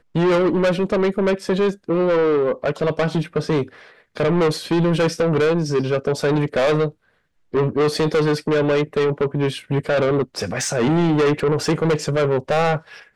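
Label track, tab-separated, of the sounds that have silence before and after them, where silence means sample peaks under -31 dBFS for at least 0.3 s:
4.170000	6.890000	sound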